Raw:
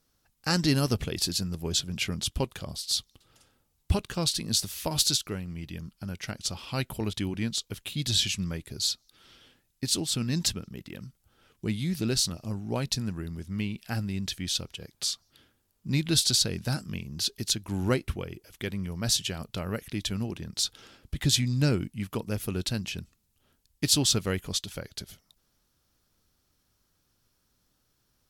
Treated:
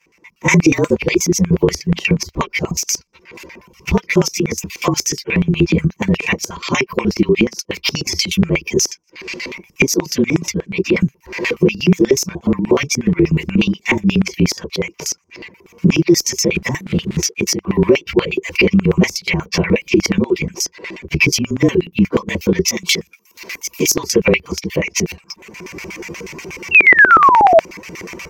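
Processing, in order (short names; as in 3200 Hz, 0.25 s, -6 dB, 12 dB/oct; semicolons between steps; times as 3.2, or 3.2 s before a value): inharmonic rescaling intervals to 112%; recorder AGC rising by 26 dB/s; notch comb 420 Hz; reverb removal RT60 0.59 s; ripple EQ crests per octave 0.79, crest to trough 13 dB; 26.71–27.6 painted sound fall 620–2800 Hz -19 dBFS; in parallel at 0 dB: compressor 6:1, threshold -39 dBFS, peak gain reduction 19 dB; 16.55–17.41 on the sum: companded quantiser 6-bit; 22.68–23.94 tilt +4 dB/oct; LFO band-pass square 8.3 Hz 370–2300 Hz; maximiser +25.5 dB; gain -1 dB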